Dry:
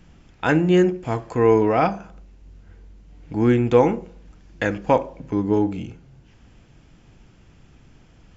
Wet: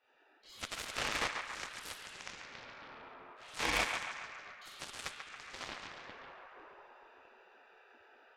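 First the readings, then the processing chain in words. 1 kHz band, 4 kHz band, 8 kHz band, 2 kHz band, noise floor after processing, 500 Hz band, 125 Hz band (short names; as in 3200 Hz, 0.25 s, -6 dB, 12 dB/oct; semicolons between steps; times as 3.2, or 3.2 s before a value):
-17.0 dB, 0.0 dB, n/a, -7.5 dB, -67 dBFS, -29.0 dB, -31.0 dB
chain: Wiener smoothing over 41 samples; reverse; compressor 4:1, threshold -32 dBFS, peak gain reduction 18 dB; reverse; HPF 41 Hz 12 dB/oct; shoebox room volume 140 m³, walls hard, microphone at 1.3 m; chorus voices 4, 0.28 Hz, delay 26 ms, depth 3.7 ms; ten-band EQ 125 Hz +6 dB, 250 Hz -3 dB, 500 Hz -9 dB, 1000 Hz +11 dB, 2000 Hz +8 dB, 4000 Hz +11 dB; AGC gain up to 3 dB; dynamic EQ 1400 Hz, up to -8 dB, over -40 dBFS, Q 2.1; spectral gate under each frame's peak -25 dB weak; added harmonics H 7 -14 dB, 8 -32 dB, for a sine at -23.5 dBFS; on a send: narrowing echo 0.139 s, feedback 65%, band-pass 1400 Hz, level -4 dB; on the sum: gain +4 dB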